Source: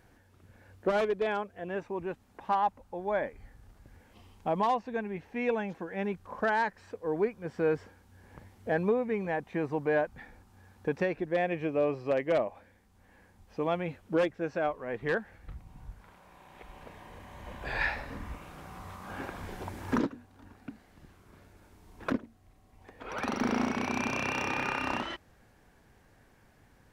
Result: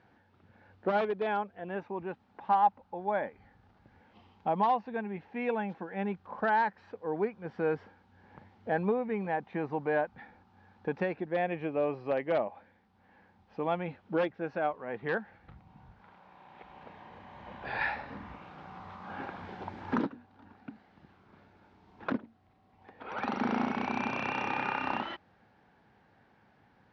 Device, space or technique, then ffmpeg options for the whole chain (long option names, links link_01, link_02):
guitar cabinet: -af "highpass=100,equalizer=frequency=200:width_type=q:width=4:gain=4,equalizer=frequency=830:width_type=q:width=4:gain=7,equalizer=frequency=1400:width_type=q:width=4:gain=3,lowpass=frequency=4400:width=0.5412,lowpass=frequency=4400:width=1.3066,volume=-3dB"